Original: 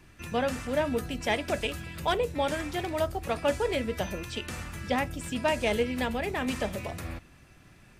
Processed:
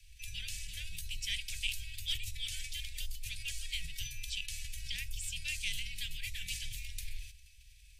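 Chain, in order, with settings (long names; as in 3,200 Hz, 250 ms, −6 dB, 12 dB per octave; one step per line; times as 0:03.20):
inverse Chebyshev band-stop filter 280–1,300 Hz, stop band 50 dB
frequency shifter −69 Hz
level that may fall only so fast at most 110 dB per second
level +1 dB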